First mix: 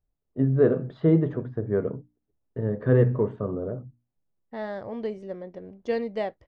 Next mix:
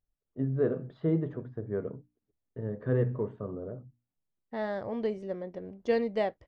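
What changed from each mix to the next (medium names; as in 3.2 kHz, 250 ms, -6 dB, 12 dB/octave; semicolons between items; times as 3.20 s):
first voice -8.0 dB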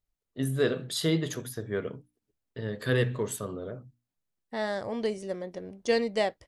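first voice: remove low-pass 1.1 kHz 12 dB/octave; master: remove tape spacing loss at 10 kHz 30 dB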